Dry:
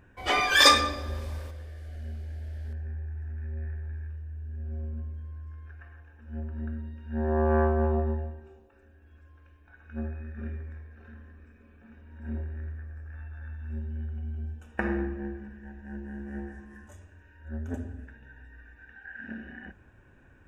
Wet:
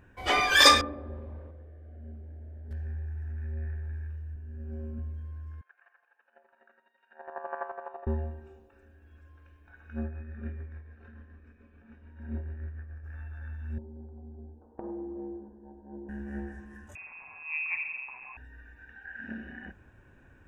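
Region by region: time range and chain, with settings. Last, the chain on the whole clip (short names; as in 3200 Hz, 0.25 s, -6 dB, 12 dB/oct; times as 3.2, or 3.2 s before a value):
0.81–2.71 band-pass 280 Hz, Q 0.6 + air absorption 380 m
4.34–4.99 bell 3800 Hz -6.5 dB 0.26 oct + doubler 18 ms -3.5 dB + mismatched tape noise reduction decoder only
5.61–8.07 HPF 650 Hz 24 dB/oct + air absorption 250 m + chopper 12 Hz, depth 65%, duty 25%
10.04–13.04 tremolo 6.9 Hz, depth 45% + air absorption 100 m
13.78–16.09 Chebyshev low-pass 970 Hz, order 4 + resonant low shelf 220 Hz -10.5 dB, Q 1.5 + compressor, threshold -35 dBFS
16.95–18.37 zero-crossing step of -47.5 dBFS + HPF 46 Hz + inverted band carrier 2600 Hz
whole clip: dry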